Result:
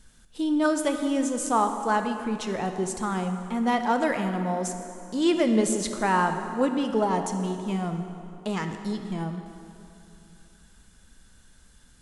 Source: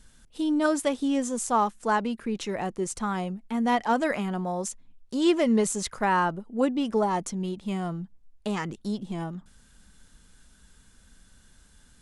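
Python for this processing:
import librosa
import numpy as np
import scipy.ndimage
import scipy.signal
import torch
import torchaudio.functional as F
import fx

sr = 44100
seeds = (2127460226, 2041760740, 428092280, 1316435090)

y = fx.rev_plate(x, sr, seeds[0], rt60_s=2.9, hf_ratio=0.7, predelay_ms=0, drr_db=6.0)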